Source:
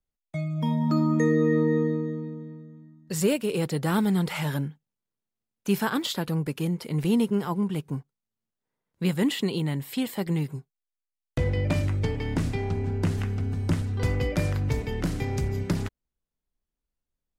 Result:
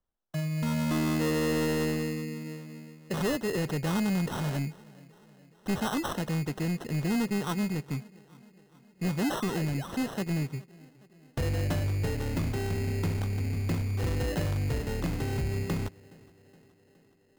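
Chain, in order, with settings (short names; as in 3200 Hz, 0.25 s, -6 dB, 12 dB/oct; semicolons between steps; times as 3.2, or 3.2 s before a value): soft clip -24 dBFS, distortion -11 dB; on a send: tape echo 0.418 s, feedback 76%, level -20.5 dB, low-pass 2000 Hz; 2.44–3.18 on the sum: dynamic EQ 640 Hz, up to +7 dB, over -53 dBFS, Q 0.97; 9.22–9.88 painted sound rise 630–3600 Hz -42 dBFS; sample-and-hold 19×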